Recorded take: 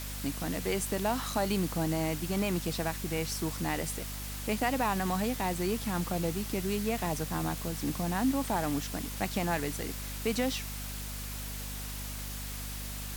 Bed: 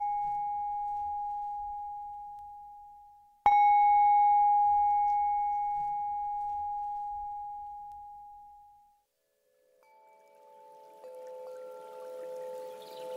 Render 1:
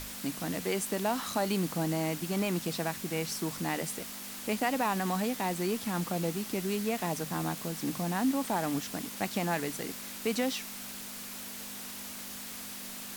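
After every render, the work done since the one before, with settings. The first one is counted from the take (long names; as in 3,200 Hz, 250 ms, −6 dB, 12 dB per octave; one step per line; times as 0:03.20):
mains-hum notches 50/100/150 Hz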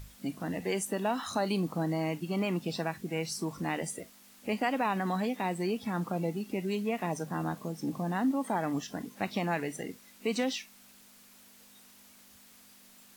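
noise reduction from a noise print 15 dB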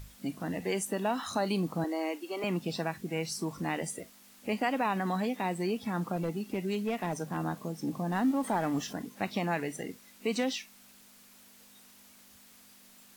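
0:01.84–0:02.44: Butterworth high-pass 280 Hz 48 dB per octave
0:06.16–0:07.37: hard clipping −25.5 dBFS
0:08.12–0:08.93: mu-law and A-law mismatch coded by mu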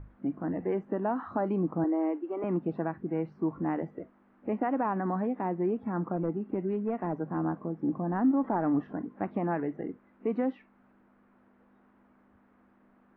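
low-pass filter 1,500 Hz 24 dB per octave
parametric band 320 Hz +7 dB 0.48 octaves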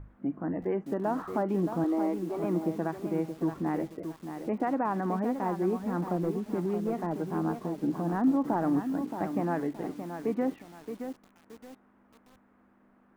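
feedback echo at a low word length 623 ms, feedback 35%, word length 8 bits, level −8 dB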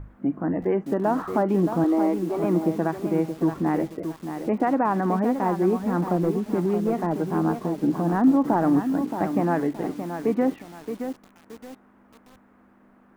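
level +7 dB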